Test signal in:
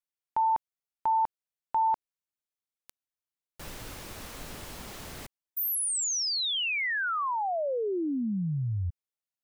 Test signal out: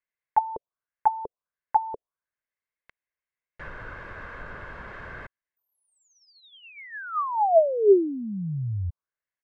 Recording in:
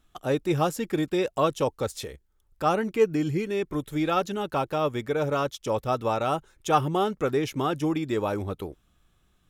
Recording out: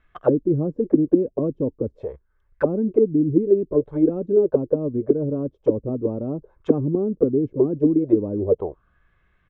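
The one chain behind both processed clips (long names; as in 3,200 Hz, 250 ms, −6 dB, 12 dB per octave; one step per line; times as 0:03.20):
comb filter 1.9 ms, depth 38%
dynamic equaliser 460 Hz, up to +6 dB, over −37 dBFS, Q 0.81
envelope-controlled low-pass 260–2,000 Hz down, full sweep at −18.5 dBFS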